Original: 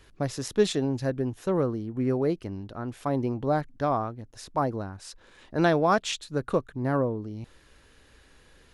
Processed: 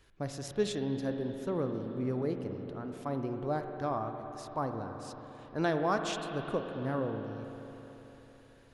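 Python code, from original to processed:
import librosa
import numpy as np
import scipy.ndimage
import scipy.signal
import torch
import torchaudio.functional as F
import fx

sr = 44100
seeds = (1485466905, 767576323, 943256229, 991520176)

y = fx.rev_spring(x, sr, rt60_s=4.0, pass_ms=(44, 55), chirp_ms=80, drr_db=5.0)
y = F.gain(torch.from_numpy(y), -8.0).numpy()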